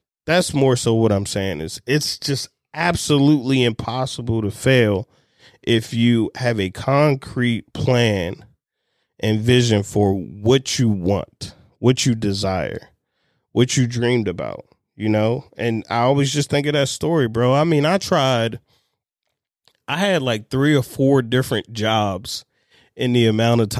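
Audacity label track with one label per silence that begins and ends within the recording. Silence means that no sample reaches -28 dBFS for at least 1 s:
18.560000	19.880000	silence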